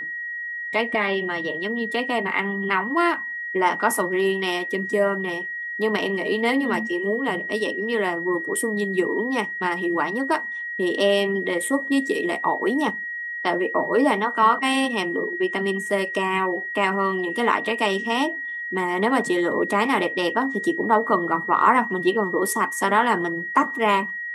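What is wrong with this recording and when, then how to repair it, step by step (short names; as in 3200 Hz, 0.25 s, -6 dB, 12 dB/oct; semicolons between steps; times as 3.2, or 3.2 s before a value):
tone 1900 Hz -28 dBFS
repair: notch 1900 Hz, Q 30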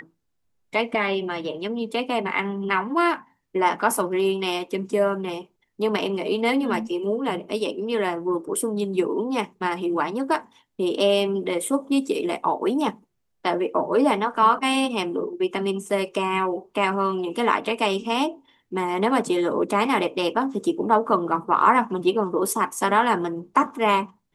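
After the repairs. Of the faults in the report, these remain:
none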